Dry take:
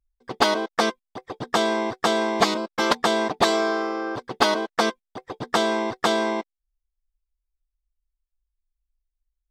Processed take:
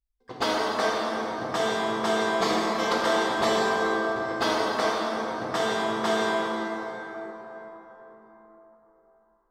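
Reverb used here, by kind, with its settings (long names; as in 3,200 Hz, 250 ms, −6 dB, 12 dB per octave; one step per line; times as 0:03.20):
dense smooth reverb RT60 4.4 s, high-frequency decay 0.5×, DRR −6.5 dB
level −9.5 dB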